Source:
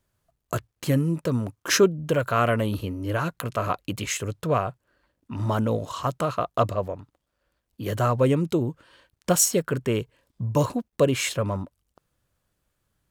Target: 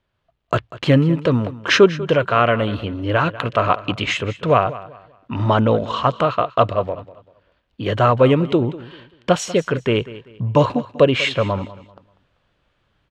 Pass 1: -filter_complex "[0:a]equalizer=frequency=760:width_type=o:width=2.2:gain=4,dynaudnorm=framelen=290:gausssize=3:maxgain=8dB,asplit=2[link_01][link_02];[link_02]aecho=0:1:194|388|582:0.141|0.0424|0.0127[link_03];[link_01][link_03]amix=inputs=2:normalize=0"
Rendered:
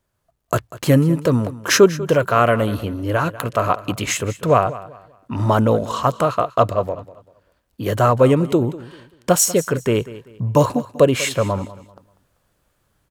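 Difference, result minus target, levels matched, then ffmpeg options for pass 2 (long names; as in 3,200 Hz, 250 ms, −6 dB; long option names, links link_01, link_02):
4,000 Hz band −3.0 dB
-filter_complex "[0:a]lowpass=frequency=3200:width_type=q:width=1.9,equalizer=frequency=760:width_type=o:width=2.2:gain=4,dynaudnorm=framelen=290:gausssize=3:maxgain=8dB,asplit=2[link_01][link_02];[link_02]aecho=0:1:194|388|582:0.141|0.0424|0.0127[link_03];[link_01][link_03]amix=inputs=2:normalize=0"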